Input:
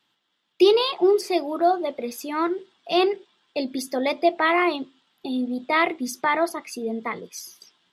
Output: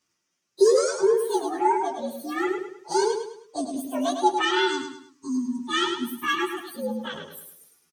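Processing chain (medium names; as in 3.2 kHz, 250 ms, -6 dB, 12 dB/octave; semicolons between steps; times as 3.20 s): frequency axis rescaled in octaves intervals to 122%; spectral selection erased 4.42–6.58 s, 400–860 Hz; feedback delay 104 ms, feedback 37%, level -6.5 dB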